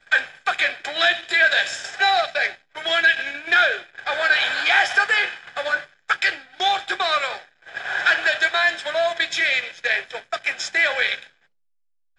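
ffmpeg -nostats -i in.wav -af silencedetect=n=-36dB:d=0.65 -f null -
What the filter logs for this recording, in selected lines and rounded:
silence_start: 11.27
silence_end: 12.19 | silence_duration: 0.92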